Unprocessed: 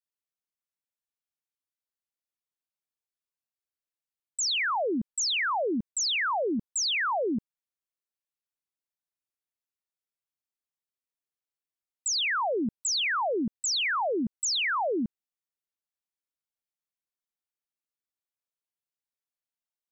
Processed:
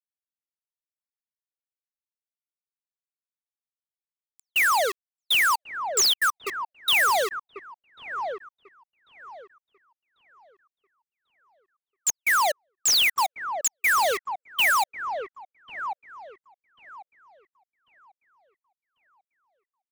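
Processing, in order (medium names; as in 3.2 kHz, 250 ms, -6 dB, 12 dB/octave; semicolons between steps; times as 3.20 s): high-pass 350 Hz 6 dB/octave; level-controlled noise filter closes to 970 Hz, open at -29.5 dBFS; tilt shelf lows -3 dB, about 880 Hz; bit crusher 5-bit; trance gate "xxxx.x..xxx..x" 181 bpm -60 dB; feedback echo behind a low-pass 1093 ms, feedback 37%, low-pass 1.4 kHz, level -4 dB; upward expansion 1.5:1, over -50 dBFS; trim +5.5 dB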